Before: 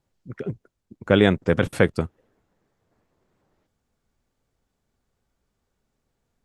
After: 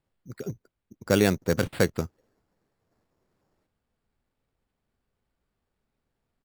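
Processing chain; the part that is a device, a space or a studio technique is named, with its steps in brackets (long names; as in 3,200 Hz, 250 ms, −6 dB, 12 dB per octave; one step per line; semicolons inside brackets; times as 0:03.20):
crushed at another speed (tape speed factor 0.8×; decimation without filtering 9×; tape speed factor 1.25×)
level −4.5 dB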